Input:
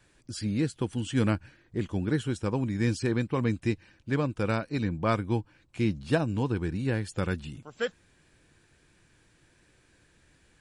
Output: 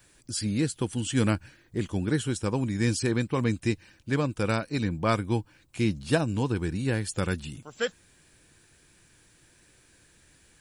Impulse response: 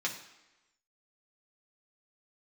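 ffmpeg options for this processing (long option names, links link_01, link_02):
-af "aemphasis=mode=production:type=50kf,volume=1dB"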